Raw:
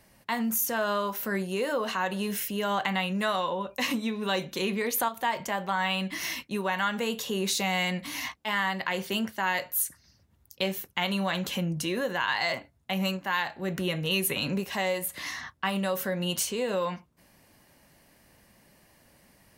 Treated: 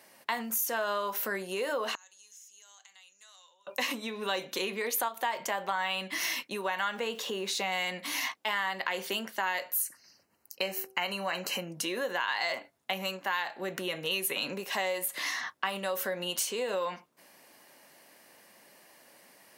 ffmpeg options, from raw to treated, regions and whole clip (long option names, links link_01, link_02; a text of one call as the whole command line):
ffmpeg -i in.wav -filter_complex "[0:a]asettb=1/sr,asplit=3[link_01][link_02][link_03];[link_01]atrim=end=1.954[link_04];[link_02]atrim=start=1.95:end=3.67,asetpts=PTS-STARTPTS,afade=type=in:duration=0.004:curve=qsin,afade=type=out:start_time=1.716:duration=0.004:curve=qsin,bandpass=frequency=6600:width_type=q:width=9.7,acompressor=threshold=-54dB:ratio=4:attack=3.2:release=140:knee=1:detection=peak[link_05];[link_03]atrim=start=3.666[link_06];[link_04][link_05]acrossfade=duration=0.004:curve1=hsin:curve2=qsin[link_07];[link_07][link_06]acrossfade=duration=0.004:curve1=qsin:curve2=hsin,asettb=1/sr,asplit=3[link_08][link_09][link_10];[link_08]atrim=end=6.954[link_11];[link_09]atrim=start=6.95:end=7.72,asetpts=PTS-STARTPTS,afade=type=in:duration=0.004:curve=qsin,afade=type=out:start_time=0.766:duration=0.004:curve=qsin,highshelf=frequency=6500:gain=-11.5,aeval=exprs='val(0)*gte(abs(val(0)),0.00282)':channel_layout=same[link_12];[link_10]atrim=start=7.716[link_13];[link_11][link_12]acrossfade=duration=0.004:curve1=hsin:curve2=qsin[link_14];[link_14][link_13]acrossfade=duration=0.004:curve1=qsin:curve2=hsin,asettb=1/sr,asplit=3[link_15][link_16][link_17];[link_15]atrim=end=9.764[link_18];[link_16]atrim=start=9.76:end=11.71,asetpts=PTS-STARTPTS,afade=type=in:duration=0.004:curve=qsin,afade=type=out:start_time=1.946:duration=0.004:curve=qsin,asuperstop=centerf=3500:order=8:qfactor=4.6,bandreject=frequency=127.6:width_type=h:width=4,bandreject=frequency=255.2:width_type=h:width=4,bandreject=frequency=382.8:width_type=h:width=4,bandreject=frequency=510.4:width_type=h:width=4,bandreject=frequency=638:width_type=h:width=4,bandreject=frequency=765.6:width_type=h:width=4[link_19];[link_17]atrim=start=11.706[link_20];[link_18][link_19]acrossfade=duration=0.004:curve1=hsin:curve2=qsin[link_21];[link_21][link_20]acrossfade=duration=0.004:curve1=qsin:curve2=hsin,acompressor=threshold=-33dB:ratio=3,highpass=370,volume=4dB" out.wav